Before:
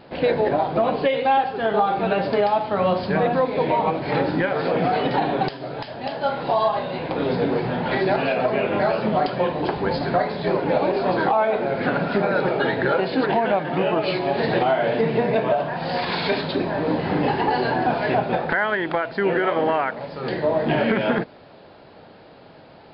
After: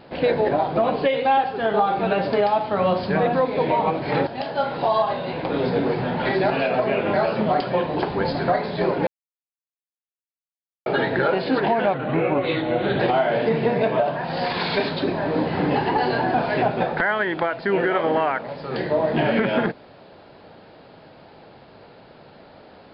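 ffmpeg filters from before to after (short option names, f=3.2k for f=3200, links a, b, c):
-filter_complex "[0:a]asplit=6[a][b][c][d][e][f];[a]atrim=end=4.272[g];[b]atrim=start=5.928:end=10.73,asetpts=PTS-STARTPTS,afade=t=out:st=4.798:d=0.004:c=hsin[h];[c]atrim=start=10.73:end=12.52,asetpts=PTS-STARTPTS,volume=0[i];[d]atrim=start=12.52:end=13.604,asetpts=PTS-STARTPTS,afade=t=in:d=0.004:c=hsin[j];[e]atrim=start=13.6:end=14.52,asetpts=PTS-STARTPTS,asetrate=38367,aresample=44100,atrim=end_sample=46634,asetpts=PTS-STARTPTS[k];[f]atrim=start=14.516[l];[h][i][j]concat=n=3:v=0:a=1[m];[g][m]acrossfade=d=0.004:c1=hsin:c2=hsin[n];[n][k]acrossfade=d=0.004:c1=hsin:c2=hsin[o];[o][l]acrossfade=d=0.004:c1=hsin:c2=hsin"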